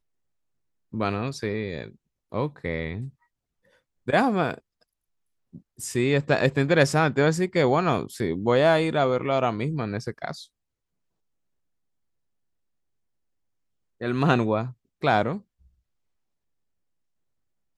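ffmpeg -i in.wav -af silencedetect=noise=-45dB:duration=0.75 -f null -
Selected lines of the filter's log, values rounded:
silence_start: 0.00
silence_end: 0.93 | silence_duration: 0.93
silence_start: 3.10
silence_end: 4.07 | silence_duration: 0.97
silence_start: 4.59
silence_end: 5.54 | silence_duration: 0.95
silence_start: 10.45
silence_end: 14.01 | silence_duration: 3.56
silence_start: 15.41
silence_end: 17.77 | silence_duration: 2.36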